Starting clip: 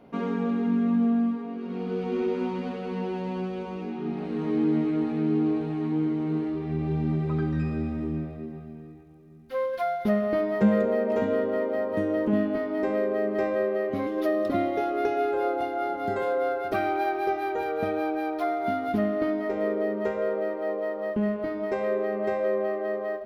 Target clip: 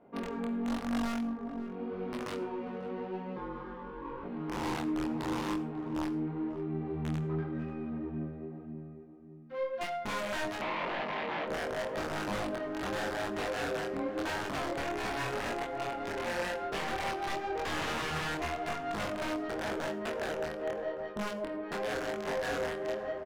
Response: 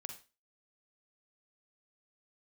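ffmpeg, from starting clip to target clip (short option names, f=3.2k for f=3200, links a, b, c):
-filter_complex "[0:a]lowshelf=f=220:g=-9.5,asettb=1/sr,asplit=3[a][b][c];[a]atrim=end=3.364[d];[b]atrim=start=3.36:end=4.24,asetpts=PTS-STARTPTS,afade=t=in:d=0.004:c=qsin,afade=t=out:st=0.876:d=0.004:c=qsin,aeval=exprs='val(0)*sin(2*PI*700*n/s)':c=same[e];[c]atrim=start=4.236[f];[d][e]acrossfade=d=0.004:c1=hsin:c2=qsin[g];[g][f]acrossfade=d=0.004:c1=qsin:c2=hsin,asettb=1/sr,asplit=3[h][i][j];[h]atrim=end=17.654[k];[i]atrim=start=17.65:end=18.35,asetpts=PTS-STARTPTS,afade=t=in:d=0.004:c=qsin,afade=t=out:st=0.696:d=0.004:c=qsin,acontrast=45[l];[j]atrim=start=18.346[m];[k][l]acrossfade=d=0.004:c1=hsin:c2=qsin[n];[n][m]acrossfade=d=0.004:c1=qsin:c2=hsin,aeval=exprs='(mod(12.6*val(0)+1,2)-1)/12.6':c=same,adynamicsmooth=sensitivity=2:basefreq=1.8k,asoftclip=type=tanh:threshold=-27.5dB,flanger=delay=20:depth=6.3:speed=0.9,asettb=1/sr,asplit=3[o][p][q];[o]atrim=end=10.614[r];[p]atrim=start=10.61:end=11.47,asetpts=PTS-STARTPTS,afade=t=in:d=0.004:c=qsin,afade=t=out:st=0.856:d=0.004:c=qsin,highpass=f=160:w=0.5412,highpass=f=160:w=1.3066,equalizer=f=240:t=q:w=4:g=-4,equalizer=f=420:t=q:w=4:g=-4,equalizer=f=1k:t=q:w=4:g=5,equalizer=f=1.5k:t=q:w=4:g=-7,equalizer=f=2.2k:t=q:w=4:g=4,lowpass=f=3.6k:w=0.5412,lowpass=f=3.6k:w=1.3066[s];[q]atrim=start=11.466[t];[r][s]acrossfade=d=0.004:c1=hsin:c2=qsin[u];[u][t]acrossfade=d=0.004:c1=qsin:c2=hsin,asplit=2[v][w];[w]adelay=543,lowpass=f=940:p=1,volume=-10dB,asplit=2[x][y];[y]adelay=543,lowpass=f=940:p=1,volume=0.32,asplit=2[z][aa];[aa]adelay=543,lowpass=f=940:p=1,volume=0.32,asplit=2[ab][ac];[ac]adelay=543,lowpass=f=940:p=1,volume=0.32[ad];[v][x][z][ab][ad]amix=inputs=5:normalize=0,asplit=2[ae][af];[1:a]atrim=start_sample=2205,asetrate=43218,aresample=44100,adelay=25[ag];[af][ag]afir=irnorm=-1:irlink=0,volume=-6.5dB[ah];[ae][ah]amix=inputs=2:normalize=0"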